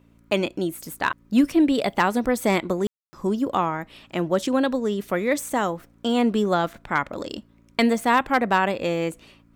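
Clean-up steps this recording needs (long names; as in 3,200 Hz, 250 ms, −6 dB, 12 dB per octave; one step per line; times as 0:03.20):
clipped peaks rebuilt −9.5 dBFS
hum removal 56.9 Hz, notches 5
ambience match 0:02.87–0:03.13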